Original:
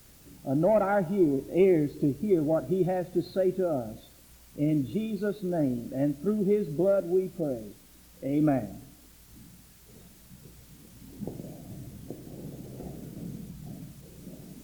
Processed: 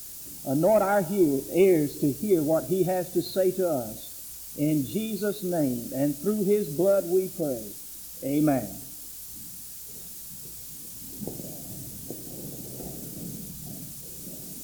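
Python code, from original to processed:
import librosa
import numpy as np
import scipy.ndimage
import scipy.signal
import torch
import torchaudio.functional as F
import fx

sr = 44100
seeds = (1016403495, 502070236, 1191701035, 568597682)

y = fx.bass_treble(x, sr, bass_db=-3, treble_db=15)
y = fx.notch(y, sr, hz=2000.0, q=22.0)
y = y * librosa.db_to_amplitude(2.5)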